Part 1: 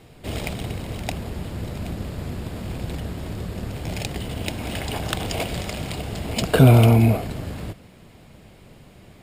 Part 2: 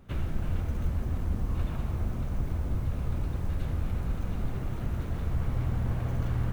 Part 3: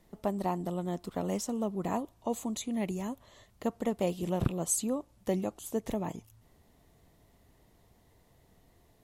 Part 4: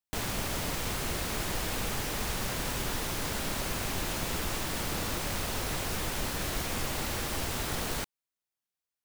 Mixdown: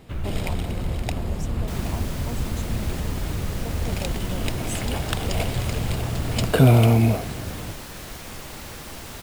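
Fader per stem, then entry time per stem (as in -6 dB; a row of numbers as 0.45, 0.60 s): -2.0, +1.5, -5.5, -4.5 dB; 0.00, 0.00, 0.00, 1.55 s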